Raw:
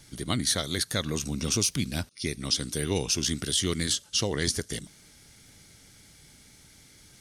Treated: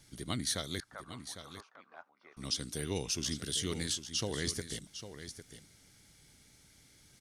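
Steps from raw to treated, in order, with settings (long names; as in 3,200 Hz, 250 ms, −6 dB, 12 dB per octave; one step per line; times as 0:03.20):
0:00.80–0:02.37: flat-topped band-pass 1,000 Hz, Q 1.4
single-tap delay 803 ms −11 dB
level −8 dB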